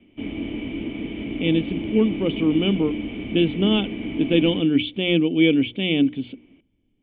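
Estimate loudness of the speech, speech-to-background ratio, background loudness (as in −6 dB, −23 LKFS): −21.5 LKFS, 9.0 dB, −30.5 LKFS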